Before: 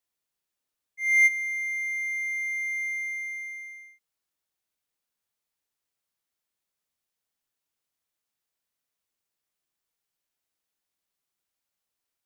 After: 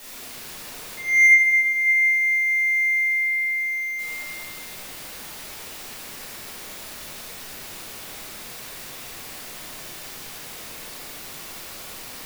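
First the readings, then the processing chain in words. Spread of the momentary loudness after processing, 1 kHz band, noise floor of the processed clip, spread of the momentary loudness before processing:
19 LU, can't be measured, −38 dBFS, 16 LU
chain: converter with a step at zero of −38 dBFS
rectangular room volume 140 cubic metres, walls hard, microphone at 1.3 metres

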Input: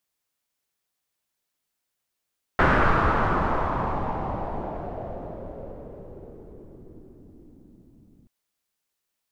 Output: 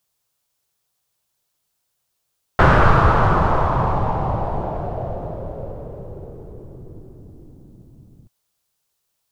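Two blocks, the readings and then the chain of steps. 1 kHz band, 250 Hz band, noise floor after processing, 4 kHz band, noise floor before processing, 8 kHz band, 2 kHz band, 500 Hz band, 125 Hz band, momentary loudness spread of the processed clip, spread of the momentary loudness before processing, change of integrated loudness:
+6.5 dB, +5.0 dB, −74 dBFS, +6.0 dB, −82 dBFS, can't be measured, +4.0 dB, +6.5 dB, +10.5 dB, 21 LU, 22 LU, +6.5 dB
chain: graphic EQ with 10 bands 125 Hz +6 dB, 250 Hz −7 dB, 2,000 Hz −6 dB
level +8 dB

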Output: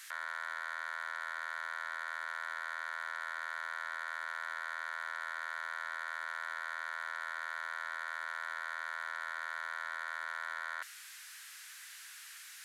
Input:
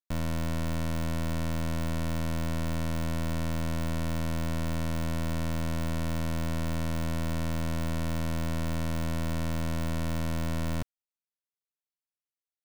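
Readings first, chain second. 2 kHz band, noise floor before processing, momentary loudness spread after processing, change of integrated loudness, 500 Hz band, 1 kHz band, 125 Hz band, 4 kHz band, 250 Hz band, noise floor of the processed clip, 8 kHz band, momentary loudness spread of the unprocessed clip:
+6.0 dB, below −85 dBFS, 9 LU, −7.5 dB, −17.5 dB, 0.0 dB, below −40 dB, −7.0 dB, below −40 dB, −51 dBFS, −8.0 dB, 0 LU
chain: linear delta modulator 64 kbit/s, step −50.5 dBFS
four-pole ladder high-pass 1,400 Hz, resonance 55%
level +16 dB

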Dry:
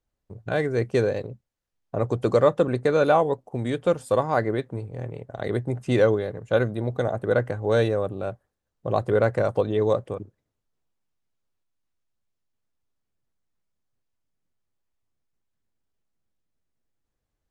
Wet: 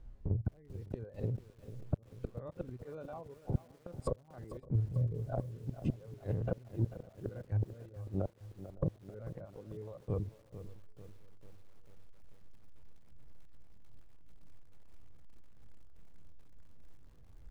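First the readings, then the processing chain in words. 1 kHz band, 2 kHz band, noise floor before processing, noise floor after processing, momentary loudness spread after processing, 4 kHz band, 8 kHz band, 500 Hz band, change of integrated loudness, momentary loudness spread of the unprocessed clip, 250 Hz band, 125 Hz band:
−24.0 dB, below −25 dB, −81 dBFS, −60 dBFS, 14 LU, below −25 dB, can't be measured, −22.0 dB, −16.0 dB, 14 LU, −14.0 dB, −7.0 dB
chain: spectrum averaged block by block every 50 ms
reverb reduction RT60 1.8 s
gate with flip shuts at −24 dBFS, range −42 dB
treble cut that deepens with the level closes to 500 Hz, closed at −39 dBFS
RIAA equalisation playback
downward compressor 4 to 1, threshold −50 dBFS, peak gain reduction 24 dB
on a send: feedback echo with a low-pass in the loop 559 ms, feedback 37%, level −22 dB
on the sum: feedback echo at a low word length 443 ms, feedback 55%, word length 12 bits, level −12.5 dB
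level +15.5 dB

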